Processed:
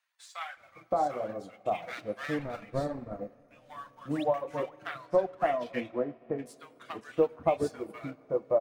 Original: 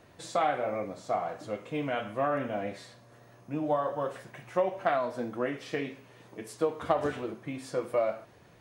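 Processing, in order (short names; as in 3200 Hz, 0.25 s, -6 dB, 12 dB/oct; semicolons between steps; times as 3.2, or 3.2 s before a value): 1.82–2.64 minimum comb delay 0.47 ms; 4.98–6.46 low-pass opened by the level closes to 1200 Hz, open at -26.5 dBFS; reverb removal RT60 1 s; sample leveller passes 1; 4.02–4.24 painted sound rise 210–4300 Hz -41 dBFS; bands offset in time highs, lows 0.57 s, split 1100 Hz; reverb RT60 4.8 s, pre-delay 6 ms, DRR 14 dB; upward expander 1.5:1, over -52 dBFS; gain +1 dB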